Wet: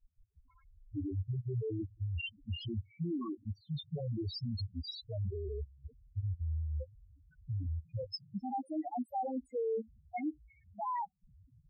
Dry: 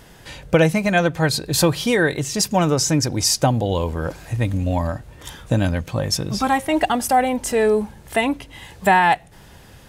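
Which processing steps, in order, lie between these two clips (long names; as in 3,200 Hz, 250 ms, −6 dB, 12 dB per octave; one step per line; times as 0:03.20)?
gliding playback speed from 54% → 115%
output level in coarse steps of 23 dB
spectral peaks only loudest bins 2
level −8.5 dB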